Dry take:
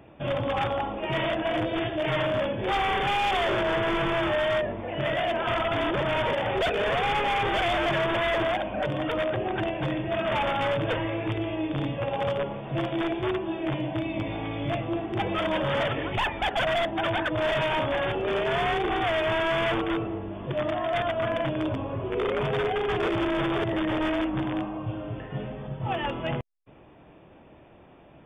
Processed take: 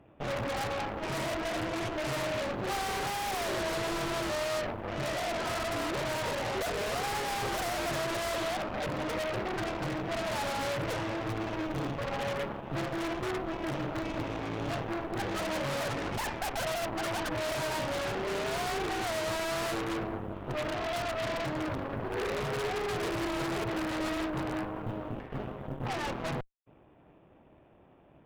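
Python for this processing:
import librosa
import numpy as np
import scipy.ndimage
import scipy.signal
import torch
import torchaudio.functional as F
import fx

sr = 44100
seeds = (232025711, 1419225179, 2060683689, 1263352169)

y = fx.tracing_dist(x, sr, depth_ms=0.31)
y = fx.high_shelf(y, sr, hz=2400.0, db=-8.5)
y = fx.quant_float(y, sr, bits=6)
y = fx.cheby_harmonics(y, sr, harmonics=(6,), levels_db=(-8,), full_scale_db=-20.0)
y = y * librosa.db_to_amplitude(-7.0)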